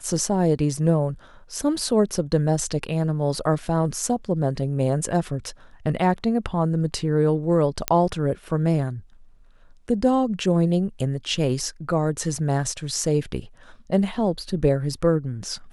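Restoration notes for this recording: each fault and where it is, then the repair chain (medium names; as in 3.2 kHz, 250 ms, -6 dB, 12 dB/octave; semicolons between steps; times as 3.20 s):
7.88 s: pop -3 dBFS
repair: de-click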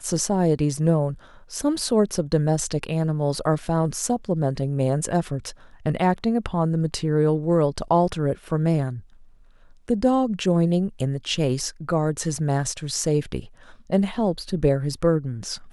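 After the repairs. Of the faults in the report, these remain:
nothing left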